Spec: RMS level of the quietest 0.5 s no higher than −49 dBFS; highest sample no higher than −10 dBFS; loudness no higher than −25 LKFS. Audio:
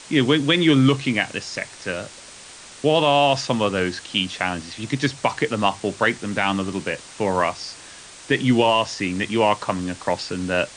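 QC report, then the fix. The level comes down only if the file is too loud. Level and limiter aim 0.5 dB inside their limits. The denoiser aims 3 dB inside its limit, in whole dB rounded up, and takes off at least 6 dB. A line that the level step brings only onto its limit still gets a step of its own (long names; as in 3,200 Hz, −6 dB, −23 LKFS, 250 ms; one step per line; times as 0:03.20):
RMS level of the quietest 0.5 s −42 dBFS: out of spec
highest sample −5.5 dBFS: out of spec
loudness −21.5 LKFS: out of spec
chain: broadband denoise 6 dB, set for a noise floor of −42 dBFS
level −4 dB
brickwall limiter −10.5 dBFS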